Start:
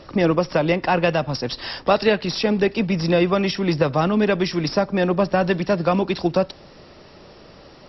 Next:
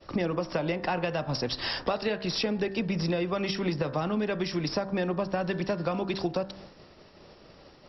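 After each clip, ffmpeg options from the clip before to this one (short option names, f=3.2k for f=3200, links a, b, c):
-af "agate=range=-33dB:threshold=-38dB:ratio=3:detection=peak,bandreject=f=64.8:t=h:w=4,bandreject=f=129.6:t=h:w=4,bandreject=f=194.4:t=h:w=4,bandreject=f=259.2:t=h:w=4,bandreject=f=324:t=h:w=4,bandreject=f=388.8:t=h:w=4,bandreject=f=453.6:t=h:w=4,bandreject=f=518.4:t=h:w=4,bandreject=f=583.2:t=h:w=4,bandreject=f=648:t=h:w=4,bandreject=f=712.8:t=h:w=4,bandreject=f=777.6:t=h:w=4,bandreject=f=842.4:t=h:w=4,bandreject=f=907.2:t=h:w=4,bandreject=f=972:t=h:w=4,bandreject=f=1.0368k:t=h:w=4,bandreject=f=1.1016k:t=h:w=4,bandreject=f=1.1664k:t=h:w=4,bandreject=f=1.2312k:t=h:w=4,bandreject=f=1.296k:t=h:w=4,bandreject=f=1.3608k:t=h:w=4,bandreject=f=1.4256k:t=h:w=4,bandreject=f=1.4904k:t=h:w=4,bandreject=f=1.5552k:t=h:w=4,bandreject=f=1.62k:t=h:w=4,bandreject=f=1.6848k:t=h:w=4,bandreject=f=1.7496k:t=h:w=4,bandreject=f=1.8144k:t=h:w=4,bandreject=f=1.8792k:t=h:w=4,acompressor=threshold=-26dB:ratio=6"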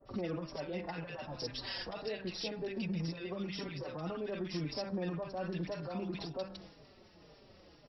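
-filter_complex "[0:a]alimiter=level_in=1dB:limit=-24dB:level=0:latency=1:release=41,volume=-1dB,acrossover=split=1200[a][b];[b]adelay=50[c];[a][c]amix=inputs=2:normalize=0,asplit=2[d][e];[e]adelay=4.6,afreqshift=-1.9[f];[d][f]amix=inputs=2:normalize=1,volume=-3dB"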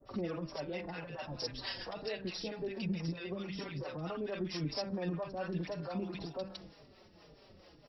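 -filter_complex "[0:a]acrossover=split=470[a][b];[a]aeval=exprs='val(0)*(1-0.7/2+0.7/2*cos(2*PI*4.5*n/s))':c=same[c];[b]aeval=exprs='val(0)*(1-0.7/2-0.7/2*cos(2*PI*4.5*n/s))':c=same[d];[c][d]amix=inputs=2:normalize=0,volume=3.5dB"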